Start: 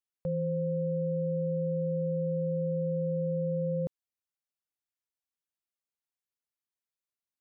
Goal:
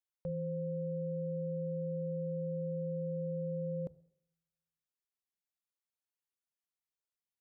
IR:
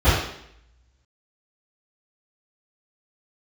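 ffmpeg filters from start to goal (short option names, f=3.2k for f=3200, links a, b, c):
-filter_complex "[0:a]asplit=2[a][b];[1:a]atrim=start_sample=2205[c];[b][c]afir=irnorm=-1:irlink=0,volume=-43.5dB[d];[a][d]amix=inputs=2:normalize=0,volume=-5.5dB"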